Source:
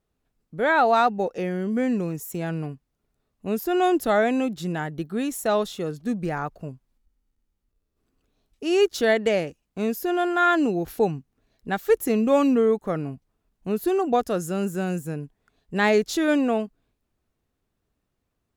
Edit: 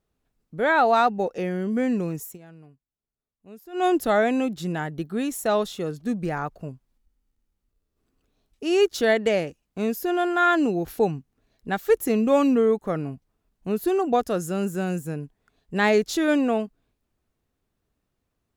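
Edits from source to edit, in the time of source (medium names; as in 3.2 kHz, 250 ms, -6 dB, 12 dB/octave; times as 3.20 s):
2.24–3.86 s: dip -18.5 dB, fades 0.14 s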